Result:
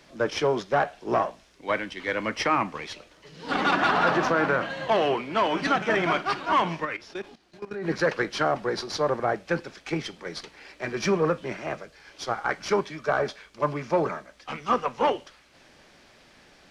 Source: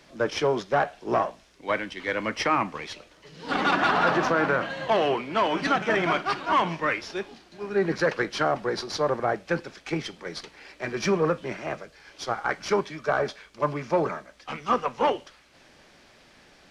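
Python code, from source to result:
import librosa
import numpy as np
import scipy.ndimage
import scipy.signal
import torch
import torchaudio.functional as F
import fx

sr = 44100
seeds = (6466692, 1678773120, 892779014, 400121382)

y = fx.level_steps(x, sr, step_db=16, at=(6.84, 7.85), fade=0.02)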